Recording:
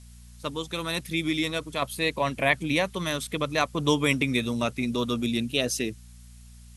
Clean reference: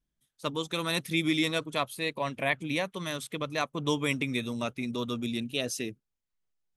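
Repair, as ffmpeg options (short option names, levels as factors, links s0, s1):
-af "bandreject=f=59.4:t=h:w=4,bandreject=f=118.8:t=h:w=4,bandreject=f=178.2:t=h:w=4,bandreject=f=237.6:t=h:w=4,agate=range=0.0891:threshold=0.01,asetnsamples=n=441:p=0,asendcmd='1.82 volume volume -5.5dB',volume=1"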